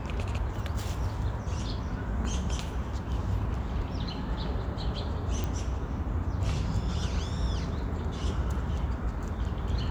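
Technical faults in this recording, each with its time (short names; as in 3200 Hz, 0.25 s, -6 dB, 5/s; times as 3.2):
5.44 pop -18 dBFS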